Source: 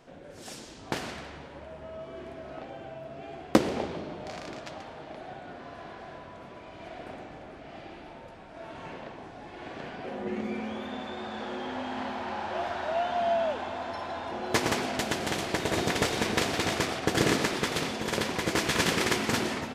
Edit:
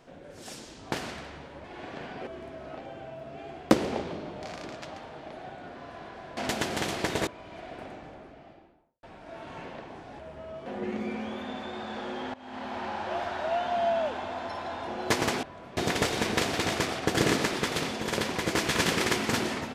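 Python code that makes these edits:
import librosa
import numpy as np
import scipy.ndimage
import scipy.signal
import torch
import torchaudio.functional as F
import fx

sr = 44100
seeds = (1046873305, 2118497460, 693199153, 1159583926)

y = fx.studio_fade_out(x, sr, start_s=7.19, length_s=1.12)
y = fx.edit(y, sr, fx.swap(start_s=1.64, length_s=0.47, other_s=9.47, other_length_s=0.63),
    fx.swap(start_s=6.21, length_s=0.34, other_s=14.87, other_length_s=0.9),
    fx.fade_in_from(start_s=11.78, length_s=0.43, floor_db=-21.0), tone=tone)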